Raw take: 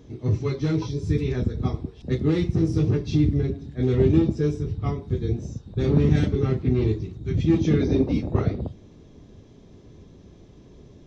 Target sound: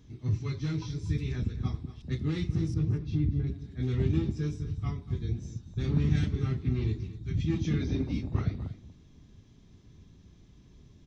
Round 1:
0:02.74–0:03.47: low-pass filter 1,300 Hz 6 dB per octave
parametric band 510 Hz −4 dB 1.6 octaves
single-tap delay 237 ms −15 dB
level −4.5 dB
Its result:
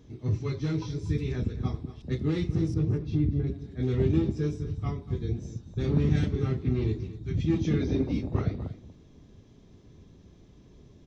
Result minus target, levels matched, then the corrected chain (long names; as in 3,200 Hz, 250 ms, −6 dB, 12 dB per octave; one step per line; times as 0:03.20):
500 Hz band +5.0 dB
0:02.74–0:03.47: low-pass filter 1,300 Hz 6 dB per octave
parametric band 510 Hz −13.5 dB 1.6 octaves
single-tap delay 237 ms −15 dB
level −4.5 dB